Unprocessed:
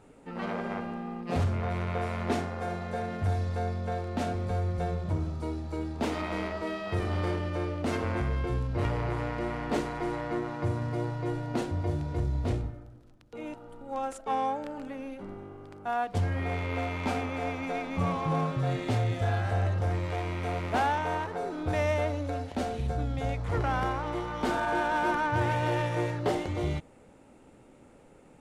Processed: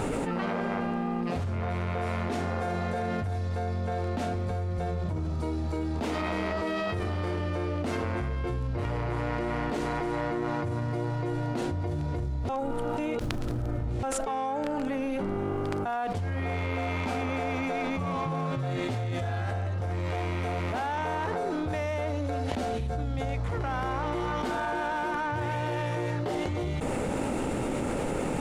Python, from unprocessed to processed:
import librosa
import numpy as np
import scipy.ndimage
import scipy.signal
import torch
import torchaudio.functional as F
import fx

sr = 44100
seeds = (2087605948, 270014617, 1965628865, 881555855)

y = fx.edit(x, sr, fx.reverse_span(start_s=12.49, length_s=1.54), tone=tone)
y = fx.env_flatten(y, sr, amount_pct=100)
y = y * librosa.db_to_amplitude(-6.0)